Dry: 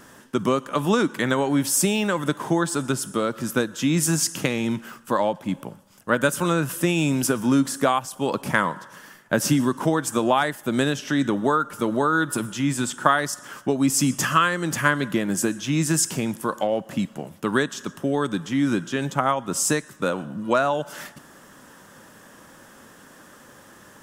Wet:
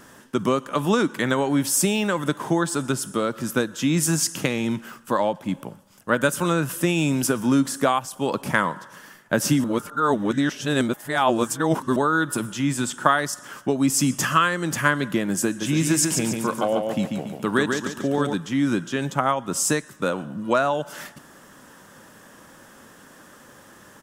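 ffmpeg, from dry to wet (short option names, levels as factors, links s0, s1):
-filter_complex "[0:a]asplit=3[s0][s1][s2];[s0]afade=t=out:st=15.6:d=0.02[s3];[s1]aecho=1:1:141|282|423|564|705:0.596|0.256|0.11|0.0474|0.0204,afade=t=in:st=15.6:d=0.02,afade=t=out:st=18.33:d=0.02[s4];[s2]afade=t=in:st=18.33:d=0.02[s5];[s3][s4][s5]amix=inputs=3:normalize=0,asplit=3[s6][s7][s8];[s6]atrim=end=9.642[s9];[s7]atrim=start=9.638:end=11.962,asetpts=PTS-STARTPTS,areverse[s10];[s8]atrim=start=11.958[s11];[s9][s10]acrossfade=d=0.004:c1=hsin:c2=hsin[s12];[s12][s11]acrossfade=d=0.004:c1=hsin:c2=hsin"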